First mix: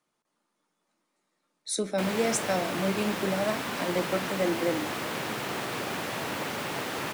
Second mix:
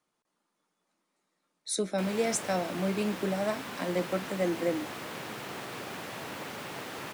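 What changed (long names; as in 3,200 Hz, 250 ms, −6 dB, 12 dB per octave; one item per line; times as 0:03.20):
background −6.5 dB
reverb: off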